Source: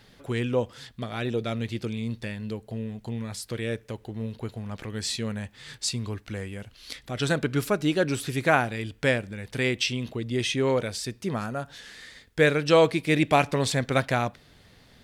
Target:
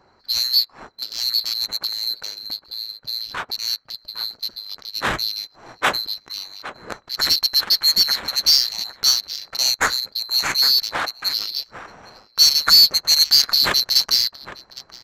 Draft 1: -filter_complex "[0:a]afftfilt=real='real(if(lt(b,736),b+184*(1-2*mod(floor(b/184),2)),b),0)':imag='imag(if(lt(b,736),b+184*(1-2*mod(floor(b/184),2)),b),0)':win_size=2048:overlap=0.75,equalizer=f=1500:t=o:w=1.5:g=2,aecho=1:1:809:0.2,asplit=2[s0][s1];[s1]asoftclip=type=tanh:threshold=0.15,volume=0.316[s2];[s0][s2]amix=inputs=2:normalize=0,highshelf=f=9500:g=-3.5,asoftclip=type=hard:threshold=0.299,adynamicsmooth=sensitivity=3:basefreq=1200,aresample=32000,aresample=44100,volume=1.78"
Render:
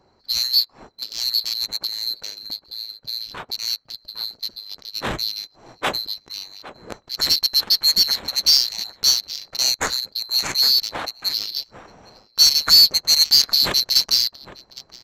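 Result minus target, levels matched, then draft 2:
saturation: distortion -9 dB; 2 kHz band -5.5 dB
-filter_complex "[0:a]afftfilt=real='real(if(lt(b,736),b+184*(1-2*mod(floor(b/184),2)),b),0)':imag='imag(if(lt(b,736),b+184*(1-2*mod(floor(b/184),2)),b),0)':win_size=2048:overlap=0.75,equalizer=f=1500:t=o:w=1.5:g=10.5,aecho=1:1:809:0.2,asplit=2[s0][s1];[s1]asoftclip=type=tanh:threshold=0.0376,volume=0.316[s2];[s0][s2]amix=inputs=2:normalize=0,highshelf=f=9500:g=-3.5,asoftclip=type=hard:threshold=0.299,adynamicsmooth=sensitivity=3:basefreq=1200,aresample=32000,aresample=44100,volume=1.78"

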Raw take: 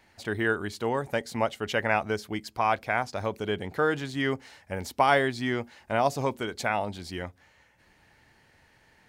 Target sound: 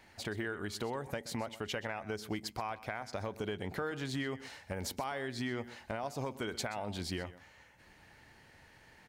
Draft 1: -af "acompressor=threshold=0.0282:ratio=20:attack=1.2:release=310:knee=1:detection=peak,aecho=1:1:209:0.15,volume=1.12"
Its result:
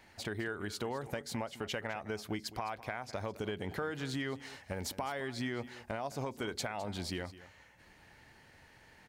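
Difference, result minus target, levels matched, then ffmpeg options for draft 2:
echo 82 ms late
-af "acompressor=threshold=0.0282:ratio=20:attack=1.2:release=310:knee=1:detection=peak,aecho=1:1:127:0.15,volume=1.12"

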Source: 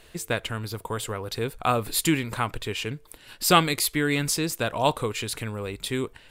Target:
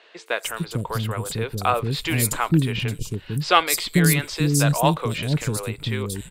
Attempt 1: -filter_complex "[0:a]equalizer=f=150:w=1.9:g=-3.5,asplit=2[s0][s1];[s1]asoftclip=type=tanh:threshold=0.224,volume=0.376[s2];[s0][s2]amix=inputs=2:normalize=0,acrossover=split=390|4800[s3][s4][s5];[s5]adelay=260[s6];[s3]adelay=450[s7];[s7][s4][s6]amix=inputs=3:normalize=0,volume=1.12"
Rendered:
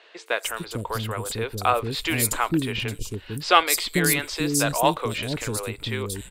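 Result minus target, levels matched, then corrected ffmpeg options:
125 Hz band -6.5 dB
-filter_complex "[0:a]equalizer=f=150:w=1.9:g=8,asplit=2[s0][s1];[s1]asoftclip=type=tanh:threshold=0.224,volume=0.376[s2];[s0][s2]amix=inputs=2:normalize=0,acrossover=split=390|4800[s3][s4][s5];[s5]adelay=260[s6];[s3]adelay=450[s7];[s7][s4][s6]amix=inputs=3:normalize=0,volume=1.12"

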